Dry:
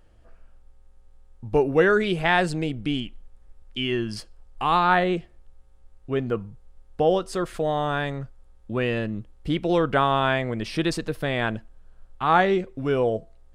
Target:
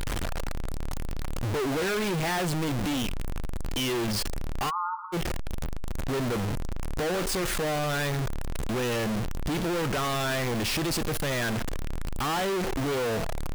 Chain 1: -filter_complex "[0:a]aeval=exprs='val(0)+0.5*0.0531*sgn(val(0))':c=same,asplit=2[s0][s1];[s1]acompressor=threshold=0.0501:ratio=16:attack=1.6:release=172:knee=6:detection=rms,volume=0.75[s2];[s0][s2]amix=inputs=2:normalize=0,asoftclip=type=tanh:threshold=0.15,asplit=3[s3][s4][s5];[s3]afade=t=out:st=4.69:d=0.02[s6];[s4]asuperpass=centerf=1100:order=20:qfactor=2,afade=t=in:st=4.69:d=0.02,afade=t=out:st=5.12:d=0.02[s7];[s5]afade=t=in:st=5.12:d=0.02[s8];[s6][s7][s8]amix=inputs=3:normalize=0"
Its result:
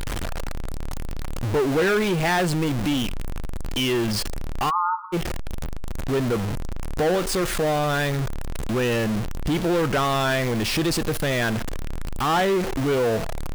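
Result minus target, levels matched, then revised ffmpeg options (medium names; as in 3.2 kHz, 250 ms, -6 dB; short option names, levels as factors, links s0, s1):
saturation: distortion -7 dB
-filter_complex "[0:a]aeval=exprs='val(0)+0.5*0.0531*sgn(val(0))':c=same,asplit=2[s0][s1];[s1]acompressor=threshold=0.0501:ratio=16:attack=1.6:release=172:knee=6:detection=rms,volume=0.75[s2];[s0][s2]amix=inputs=2:normalize=0,asoftclip=type=tanh:threshold=0.0473,asplit=3[s3][s4][s5];[s3]afade=t=out:st=4.69:d=0.02[s6];[s4]asuperpass=centerf=1100:order=20:qfactor=2,afade=t=in:st=4.69:d=0.02,afade=t=out:st=5.12:d=0.02[s7];[s5]afade=t=in:st=5.12:d=0.02[s8];[s6][s7][s8]amix=inputs=3:normalize=0"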